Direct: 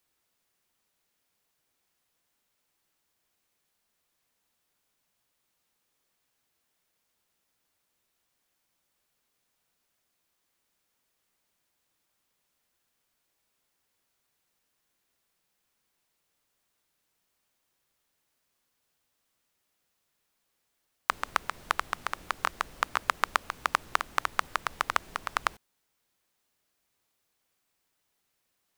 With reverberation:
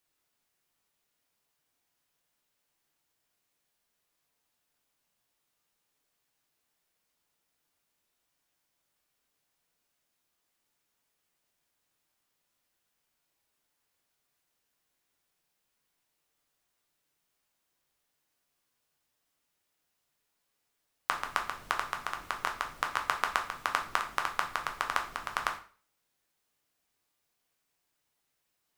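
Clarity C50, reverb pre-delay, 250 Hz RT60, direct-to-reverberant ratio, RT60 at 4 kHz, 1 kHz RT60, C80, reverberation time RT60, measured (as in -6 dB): 10.5 dB, 4 ms, 0.40 s, 2.5 dB, 0.40 s, 0.40 s, 15.0 dB, 0.40 s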